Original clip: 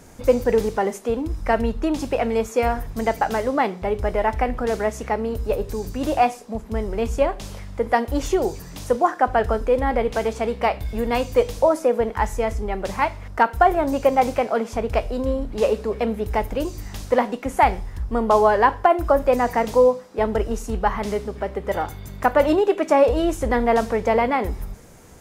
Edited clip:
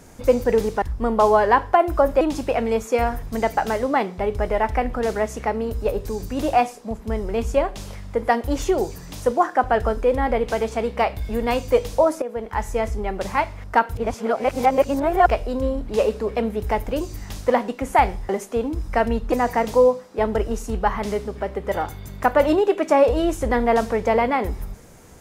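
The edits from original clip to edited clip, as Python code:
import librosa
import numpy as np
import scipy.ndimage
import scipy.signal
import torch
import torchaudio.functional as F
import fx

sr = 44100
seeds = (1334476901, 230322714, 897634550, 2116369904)

y = fx.edit(x, sr, fx.swap(start_s=0.82, length_s=1.03, other_s=17.93, other_length_s=1.39),
    fx.fade_in_from(start_s=11.86, length_s=0.57, floor_db=-13.0),
    fx.reverse_span(start_s=13.59, length_s=1.33), tone=tone)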